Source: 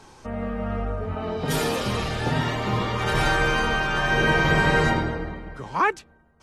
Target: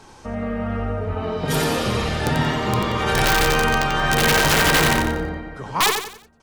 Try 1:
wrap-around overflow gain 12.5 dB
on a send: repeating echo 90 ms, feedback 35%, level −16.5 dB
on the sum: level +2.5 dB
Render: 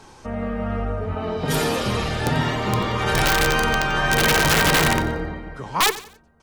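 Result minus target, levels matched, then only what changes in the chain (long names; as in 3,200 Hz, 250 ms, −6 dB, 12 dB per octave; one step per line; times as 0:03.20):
echo-to-direct −10.5 dB
change: repeating echo 90 ms, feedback 35%, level −6 dB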